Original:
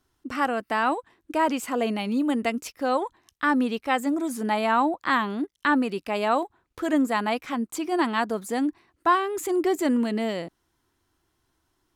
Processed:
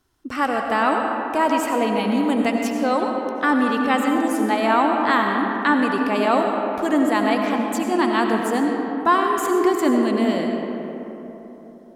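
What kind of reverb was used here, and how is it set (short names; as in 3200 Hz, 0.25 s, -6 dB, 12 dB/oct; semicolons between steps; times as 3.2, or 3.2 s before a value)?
digital reverb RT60 3.7 s, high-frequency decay 0.4×, pre-delay 50 ms, DRR 1.5 dB; gain +3 dB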